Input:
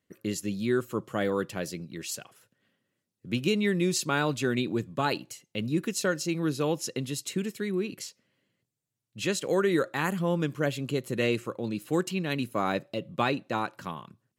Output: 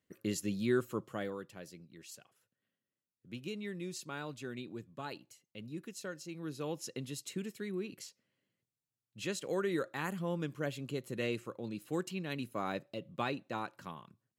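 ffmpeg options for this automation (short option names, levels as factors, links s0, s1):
-af "volume=1.33,afade=t=out:st=0.78:d=0.62:silence=0.266073,afade=t=in:st=6.31:d=0.62:silence=0.473151"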